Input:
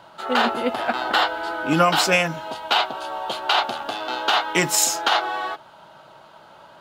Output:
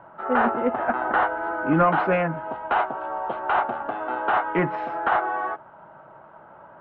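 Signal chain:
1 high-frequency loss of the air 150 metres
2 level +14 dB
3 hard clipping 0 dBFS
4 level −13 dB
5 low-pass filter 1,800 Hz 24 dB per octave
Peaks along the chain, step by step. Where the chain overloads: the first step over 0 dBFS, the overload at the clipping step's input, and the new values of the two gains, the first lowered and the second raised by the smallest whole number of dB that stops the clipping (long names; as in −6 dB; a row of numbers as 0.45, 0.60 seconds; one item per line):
−6.5, +7.5, 0.0, −13.0, −11.5 dBFS
step 2, 7.5 dB
step 2 +6 dB, step 4 −5 dB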